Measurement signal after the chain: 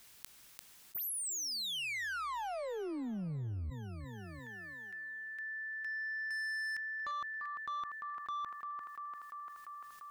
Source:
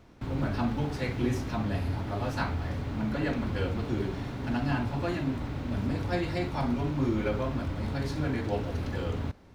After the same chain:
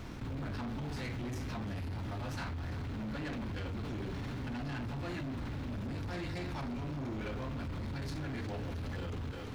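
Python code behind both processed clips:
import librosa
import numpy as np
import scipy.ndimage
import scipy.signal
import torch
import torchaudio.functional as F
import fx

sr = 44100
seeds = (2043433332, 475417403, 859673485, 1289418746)

y = fx.peak_eq(x, sr, hz=550.0, db=-5.5, octaves=1.6)
y = fx.echo_thinned(y, sr, ms=345, feedback_pct=51, hz=190.0, wet_db=-15.5)
y = 10.0 ** (-33.0 / 20.0) * np.tanh(y / 10.0 ** (-33.0 / 20.0))
y = fx.env_flatten(y, sr, amount_pct=70)
y = y * librosa.db_to_amplitude(-3.5)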